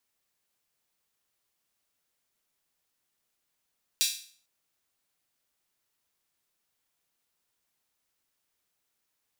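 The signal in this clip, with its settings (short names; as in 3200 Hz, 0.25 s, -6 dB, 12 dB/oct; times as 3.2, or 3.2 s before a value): open hi-hat length 0.45 s, high-pass 3600 Hz, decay 0.47 s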